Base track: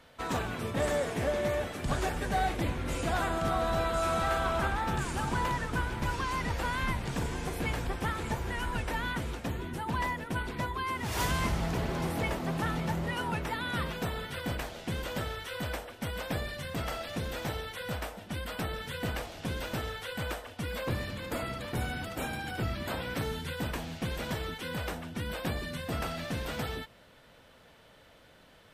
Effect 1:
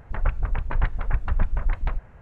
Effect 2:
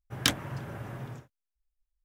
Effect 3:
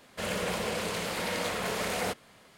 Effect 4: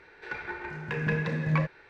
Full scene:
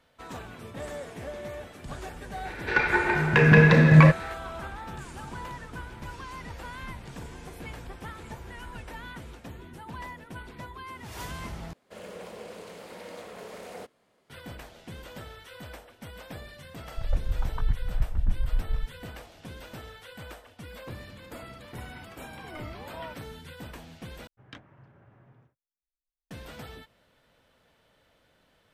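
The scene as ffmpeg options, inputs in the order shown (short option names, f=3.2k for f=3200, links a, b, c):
-filter_complex "[4:a]asplit=2[a][b];[0:a]volume=-8dB[c];[a]alimiter=level_in=17.5dB:limit=-1dB:release=50:level=0:latency=1[d];[3:a]equalizer=f=440:w=0.61:g=8.5[e];[1:a]afwtdn=0.0355[f];[b]aeval=exprs='val(0)*sin(2*PI*630*n/s+630*0.3/1.3*sin(2*PI*1.3*n/s))':c=same[g];[2:a]lowpass=2.5k[h];[c]asplit=3[i][j][k];[i]atrim=end=11.734[l];[e]atrim=end=2.57,asetpts=PTS-STARTPTS,volume=-16dB[m];[j]atrim=start=14.296:end=24.274[n];[h]atrim=end=2.04,asetpts=PTS-STARTPTS,volume=-17.5dB[o];[k]atrim=start=26.306[p];[d]atrim=end=1.89,asetpts=PTS-STARTPTS,volume=-4dB,afade=t=in:d=0.004:c=hsin,afade=t=out:st=1.886:d=0.004:c=hsin,adelay=2450[q];[f]atrim=end=2.21,asetpts=PTS-STARTPTS,volume=-3dB,afade=t=in:d=0.004:c=hsin,afade=t=out:st=2.206:d=0.004:c=hsin,adelay=16870[r];[g]atrim=end=1.89,asetpts=PTS-STARTPTS,volume=-12.5dB,afade=t=in:d=0.004:c=hsin,afade=t=out:st=1.886:d=0.004:c=hsin,adelay=21470[s];[l][m]acrossfade=d=0.004:c1=hsin:c2=hsin[t];[t][n]acrossfade=d=0.004:c1=hsin:c2=hsin[u];[u][o]acrossfade=d=0.004:c1=hsin:c2=hsin[v];[v][p]acrossfade=d=0.004:c1=hsin:c2=hsin[w];[w][q][r][s]amix=inputs=4:normalize=0"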